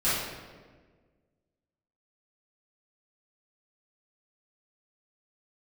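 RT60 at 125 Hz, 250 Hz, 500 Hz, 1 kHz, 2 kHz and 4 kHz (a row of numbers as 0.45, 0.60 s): 1.8, 1.9, 1.7, 1.3, 1.2, 0.95 s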